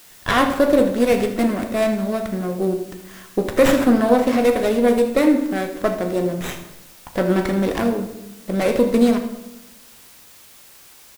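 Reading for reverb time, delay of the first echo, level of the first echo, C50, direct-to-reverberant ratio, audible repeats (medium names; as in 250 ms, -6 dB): 0.95 s, 79 ms, -14.0 dB, 8.0 dB, 5.0 dB, 1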